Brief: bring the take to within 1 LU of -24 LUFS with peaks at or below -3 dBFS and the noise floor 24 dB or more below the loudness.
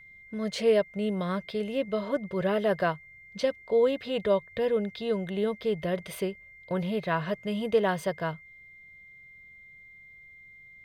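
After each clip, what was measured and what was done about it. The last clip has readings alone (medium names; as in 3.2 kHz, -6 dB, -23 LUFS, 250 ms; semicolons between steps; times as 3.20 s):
steady tone 2.1 kHz; tone level -49 dBFS; loudness -29.0 LUFS; peak level -12.5 dBFS; loudness target -24.0 LUFS
-> band-stop 2.1 kHz, Q 30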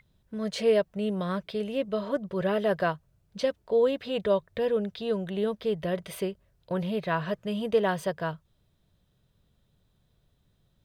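steady tone not found; loudness -29.0 LUFS; peak level -13.0 dBFS; loudness target -24.0 LUFS
-> trim +5 dB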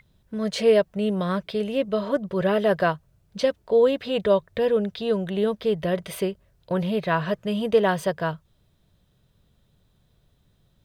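loudness -24.0 LUFS; peak level -8.0 dBFS; noise floor -65 dBFS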